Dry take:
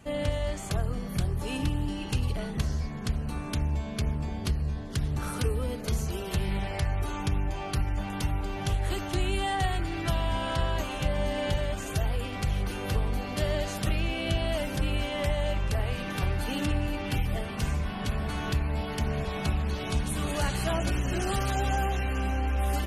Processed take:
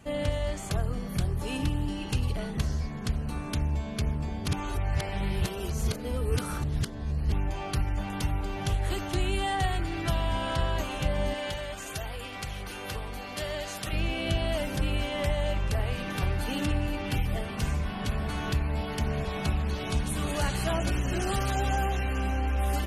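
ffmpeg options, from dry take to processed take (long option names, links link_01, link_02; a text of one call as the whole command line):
ffmpeg -i in.wav -filter_complex "[0:a]asettb=1/sr,asplit=3[link_01][link_02][link_03];[link_01]atrim=end=11.344[link_04];[link_02]atrim=start=11.34:end=13.93,asetpts=PTS-STARTPTS,afade=type=in:duration=0.004:curve=qsin,afade=type=out:start_time=2.586:duration=0.004:curve=qsin,lowshelf=frequency=450:gain=-10.5[link_05];[link_03]atrim=start=13.926[link_06];[link_04][link_05]acrossfade=duration=0.004:curve1=hsin:curve2=qsin[link_07];[link_07][link_06]acrossfade=duration=0.004:curve1=qsin:curve2=hsin,asplit=3[link_08][link_09][link_10];[link_08]atrim=end=4.482[link_11];[link_09]atrim=start=4.478:end=7.322,asetpts=PTS-STARTPTS,areverse[link_12];[link_10]atrim=start=7.318[link_13];[link_11][link_12]acrossfade=duration=0.004:curve1=hsin:curve2=hsin[link_14];[link_14][link_13]acrossfade=duration=0.004:curve1=hsin:curve2=hsin" out.wav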